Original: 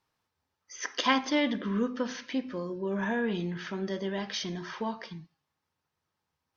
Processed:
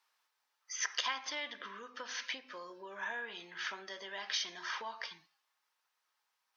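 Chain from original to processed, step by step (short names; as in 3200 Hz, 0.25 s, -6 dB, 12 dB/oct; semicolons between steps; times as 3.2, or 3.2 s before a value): compressor 6:1, threshold -35 dBFS, peak gain reduction 14.5 dB; HPF 1000 Hz 12 dB/oct; gain +4 dB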